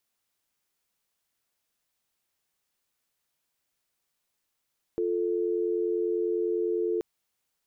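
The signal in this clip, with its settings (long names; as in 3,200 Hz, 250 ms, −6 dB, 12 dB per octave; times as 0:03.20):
call progress tone dial tone, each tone −27.5 dBFS 2.03 s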